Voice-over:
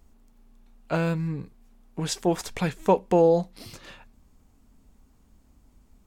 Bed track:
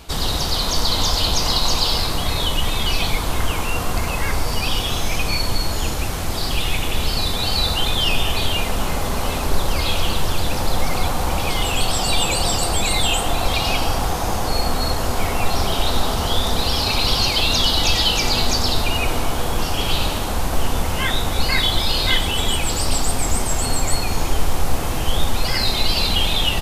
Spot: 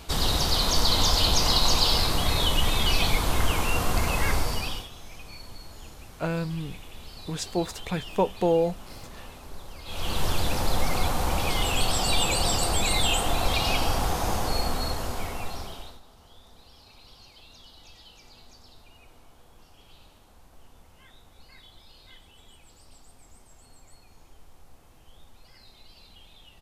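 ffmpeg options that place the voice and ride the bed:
-filter_complex "[0:a]adelay=5300,volume=-3.5dB[a];[1:a]volume=14.5dB,afade=t=out:st=4.31:d=0.58:silence=0.105925,afade=t=in:st=9.85:d=0.4:silence=0.133352,afade=t=out:st=14.31:d=1.69:silence=0.0375837[b];[a][b]amix=inputs=2:normalize=0"

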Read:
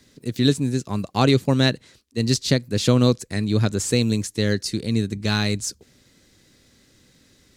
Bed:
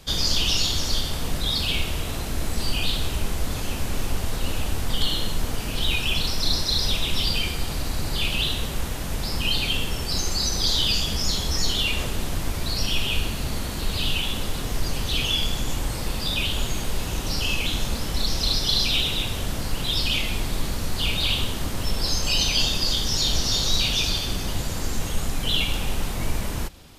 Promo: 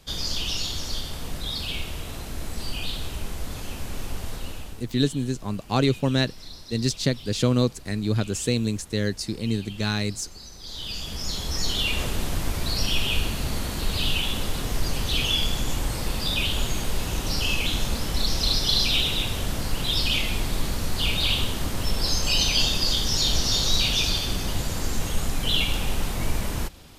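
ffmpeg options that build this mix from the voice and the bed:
-filter_complex "[0:a]adelay=4550,volume=-4dB[a];[1:a]volume=13dB,afade=t=out:st=4.31:d=0.56:silence=0.223872,afade=t=in:st=10.62:d=1.46:silence=0.112202[b];[a][b]amix=inputs=2:normalize=0"

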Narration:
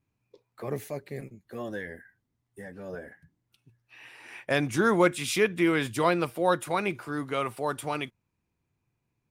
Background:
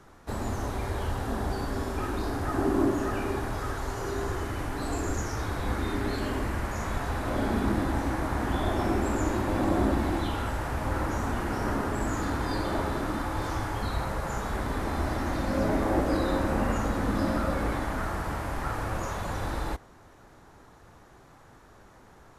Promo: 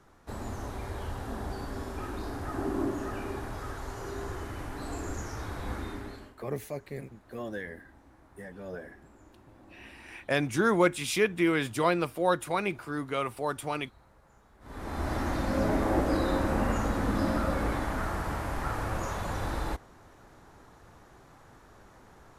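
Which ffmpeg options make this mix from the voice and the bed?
-filter_complex "[0:a]adelay=5800,volume=-1.5dB[a];[1:a]volume=22dB,afade=t=out:st=5.75:d=0.6:silence=0.0707946,afade=t=in:st=14.6:d=0.57:silence=0.0398107[b];[a][b]amix=inputs=2:normalize=0"

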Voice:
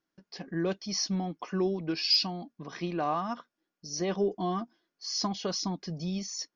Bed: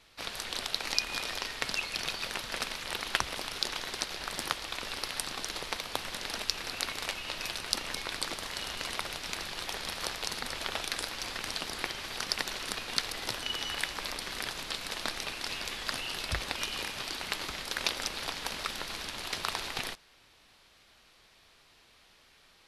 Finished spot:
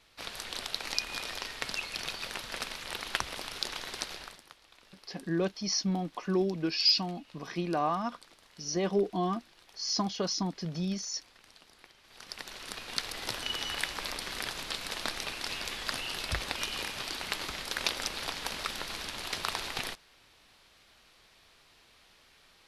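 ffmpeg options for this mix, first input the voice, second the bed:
-filter_complex "[0:a]adelay=4750,volume=0.5dB[a];[1:a]volume=19dB,afade=t=out:st=4.11:d=0.29:silence=0.112202,afade=t=in:st=12.04:d=1.37:silence=0.0841395[b];[a][b]amix=inputs=2:normalize=0"

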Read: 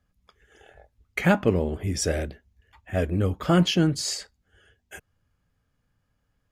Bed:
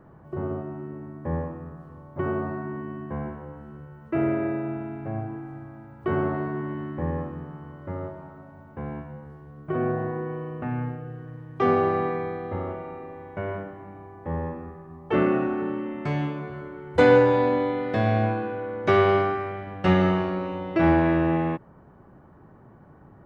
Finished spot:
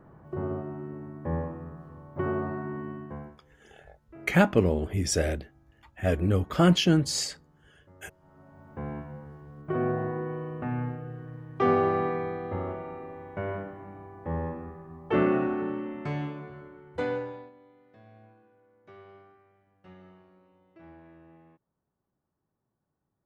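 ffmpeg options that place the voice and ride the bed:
-filter_complex "[0:a]adelay=3100,volume=-0.5dB[a];[1:a]volume=19dB,afade=t=out:st=2.88:d=0.52:silence=0.0891251,afade=t=in:st=8.2:d=0.55:silence=0.0891251,afade=t=out:st=15.46:d=2.06:silence=0.0316228[b];[a][b]amix=inputs=2:normalize=0"

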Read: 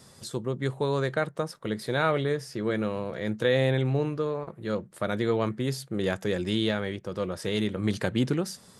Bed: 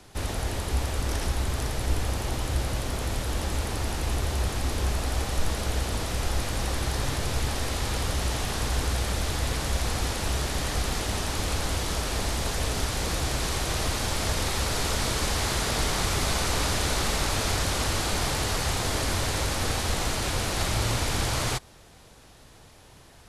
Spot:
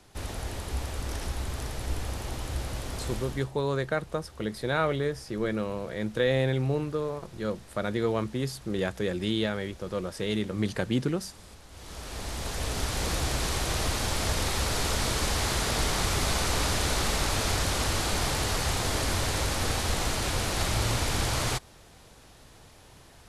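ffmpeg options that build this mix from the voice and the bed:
-filter_complex "[0:a]adelay=2750,volume=-1.5dB[a];[1:a]volume=16dB,afade=t=out:st=3.13:d=0.38:silence=0.141254,afade=t=in:st=11.7:d=1.34:silence=0.0841395[b];[a][b]amix=inputs=2:normalize=0"

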